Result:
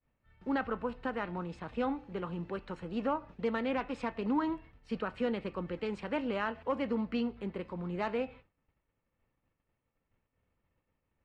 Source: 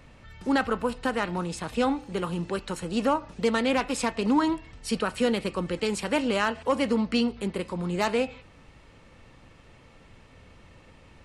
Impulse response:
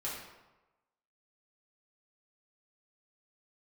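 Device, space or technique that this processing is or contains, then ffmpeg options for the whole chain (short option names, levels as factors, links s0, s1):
hearing-loss simulation: -af "lowpass=2400,agate=range=0.0224:threshold=0.0112:ratio=3:detection=peak,volume=0.398"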